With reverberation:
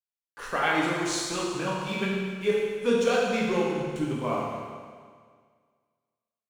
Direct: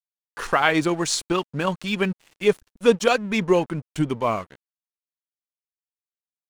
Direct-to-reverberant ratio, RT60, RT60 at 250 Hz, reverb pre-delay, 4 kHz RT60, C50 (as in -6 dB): -5.5 dB, 1.8 s, 1.8 s, 9 ms, 1.8 s, -1.0 dB